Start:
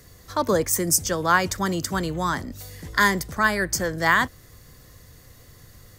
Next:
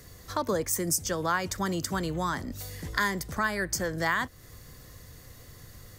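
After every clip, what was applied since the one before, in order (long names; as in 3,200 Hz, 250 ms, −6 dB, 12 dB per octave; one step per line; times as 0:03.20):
downward compressor 2 to 1, threshold −30 dBFS, peak gain reduction 10 dB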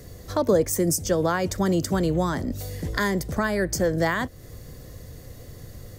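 low shelf with overshoot 790 Hz +6.5 dB, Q 1.5
level +1.5 dB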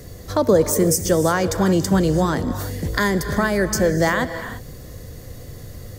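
reverb whose tail is shaped and stops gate 370 ms rising, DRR 9.5 dB
level +4.5 dB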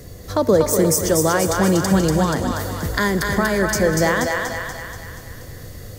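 feedback echo with a high-pass in the loop 240 ms, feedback 58%, high-pass 540 Hz, level −3 dB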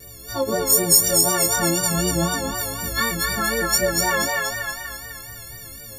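every partial snapped to a pitch grid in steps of 4 semitones
pitch vibrato 4 Hz 73 cents
multi-voice chorus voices 4, 0.53 Hz, delay 17 ms, depth 2 ms
level −3.5 dB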